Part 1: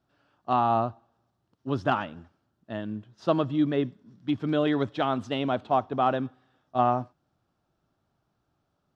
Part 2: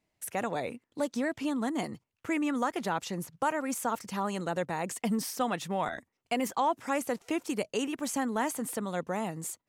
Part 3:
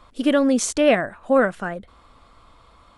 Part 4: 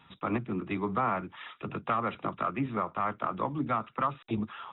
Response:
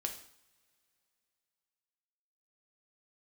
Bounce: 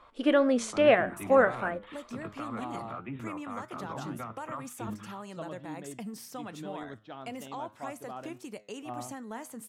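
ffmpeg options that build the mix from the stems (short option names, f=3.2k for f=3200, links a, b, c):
-filter_complex "[0:a]adelay=2100,volume=-13.5dB[a];[1:a]acompressor=threshold=-51dB:ratio=1.5,adelay=950,volume=2dB[b];[2:a]bass=f=250:g=-13,treble=f=4k:g=-12,volume=1.5dB[c];[3:a]alimiter=limit=-24dB:level=0:latency=1:release=15,adelay=500,volume=-2dB[d];[a][b][c][d]amix=inputs=4:normalize=0,equalizer=f=64:t=o:w=2:g=2.5,flanger=delay=7.9:depth=2.1:regen=86:speed=1.9:shape=triangular"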